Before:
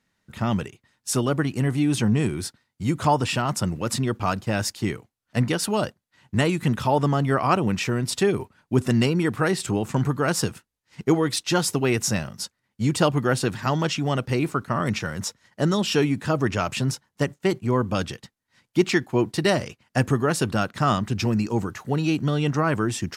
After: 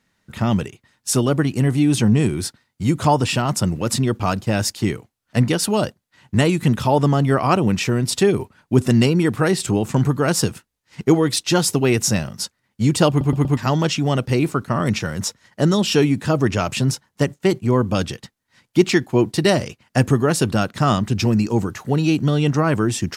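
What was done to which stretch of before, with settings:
13.09 s: stutter in place 0.12 s, 4 plays
whole clip: dynamic bell 1.4 kHz, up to -4 dB, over -38 dBFS, Q 0.73; trim +5.5 dB

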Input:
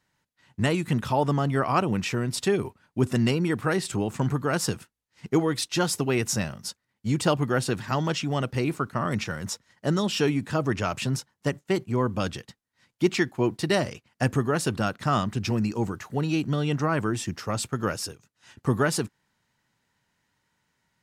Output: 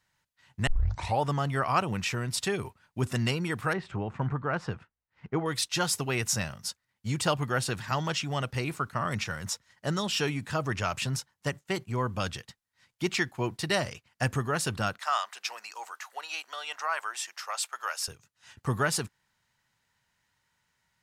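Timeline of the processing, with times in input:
0.67 s: tape start 0.53 s
3.73–5.46 s: low-pass 1.8 kHz
14.99–18.08 s: high-pass 700 Hz 24 dB/octave
whole clip: peaking EQ 290 Hz -9.5 dB 1.9 oct

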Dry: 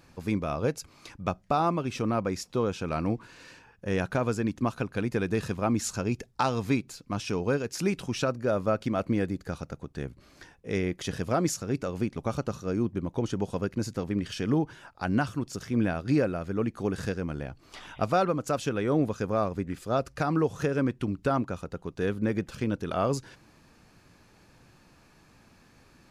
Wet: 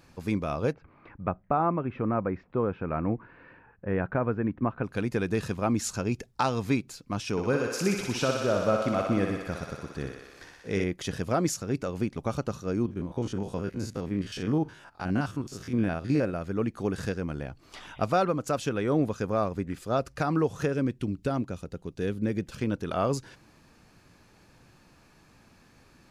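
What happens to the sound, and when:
0.73–4.84 s: low-pass 2 kHz 24 dB/octave
7.31–10.84 s: thinning echo 61 ms, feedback 82%, high-pass 350 Hz, level -4 dB
12.86–16.34 s: spectrogram pixelated in time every 50 ms
20.74–22.52 s: peaking EQ 1.1 kHz -8 dB 1.6 oct

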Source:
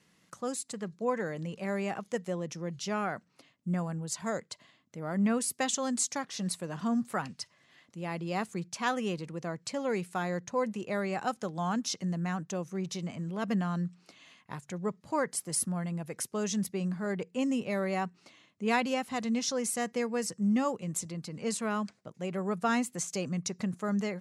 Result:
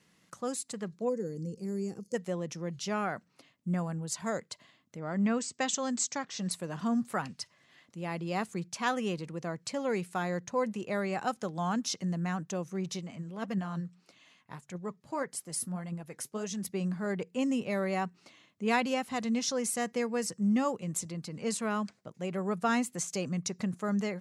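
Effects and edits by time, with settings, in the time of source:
1.08–2.14 s: time-frequency box 520–4300 Hz -21 dB
4.97–6.51 s: Chebyshev low-pass 8 kHz, order 6
12.99–16.64 s: flange 1.7 Hz, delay 0 ms, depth 8.6 ms, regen +62%

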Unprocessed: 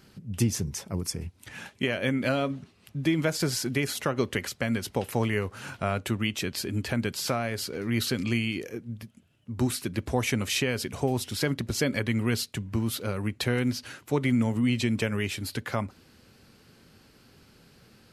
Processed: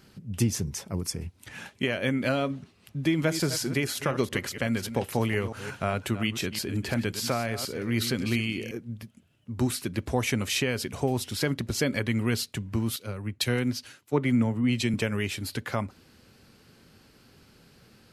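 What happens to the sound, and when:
3.05–8.78 s: chunks repeated in reverse 177 ms, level -11 dB
12.96–14.94 s: three bands expanded up and down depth 100%

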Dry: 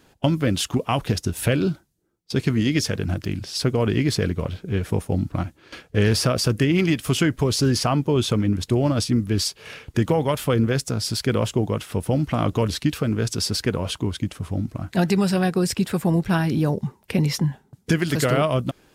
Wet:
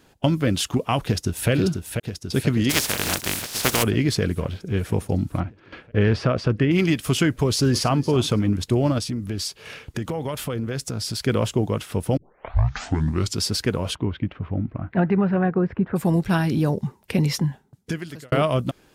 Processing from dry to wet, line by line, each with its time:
1.05–1.50 s: echo throw 490 ms, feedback 70%, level -5.5 dB
2.69–3.82 s: spectral contrast reduction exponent 0.29
5.40–6.71 s: low-pass 2.5 kHz
7.45–7.98 s: echo throw 280 ms, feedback 20%, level -16.5 dB
8.98–11.26 s: compression 4:1, threshold -24 dBFS
12.17 s: tape start 1.24 s
13.94–15.95 s: low-pass 3 kHz -> 1.6 kHz 24 dB/octave
17.35–18.32 s: fade out

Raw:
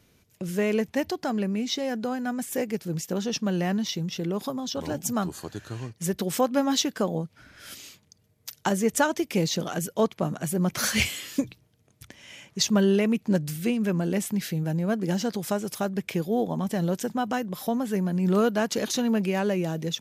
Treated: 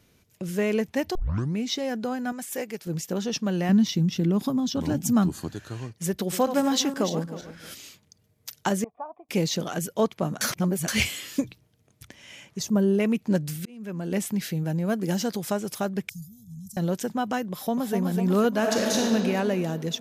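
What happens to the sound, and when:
1.15 s: tape start 0.42 s
2.32–2.87 s: bass shelf 350 Hz -10.5 dB
3.69–5.55 s: resonant low shelf 350 Hz +6.5 dB, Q 1.5
6.15–7.72 s: backward echo that repeats 158 ms, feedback 46%, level -9.5 dB
8.84–9.29 s: cascade formant filter a
10.41–10.88 s: reverse
12.59–13.00 s: peaking EQ 2.8 kHz -14 dB 2.3 oct
13.56–14.12 s: slow attack 680 ms
14.85–15.39 s: treble shelf 8.7 kHz +9 dB
16.09–16.77 s: inverse Chebyshev band-stop 320–2600 Hz, stop band 50 dB
17.52–17.95 s: echo throw 250 ms, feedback 70%, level -5 dB
18.58–19.02 s: reverb throw, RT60 2.7 s, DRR -1.5 dB

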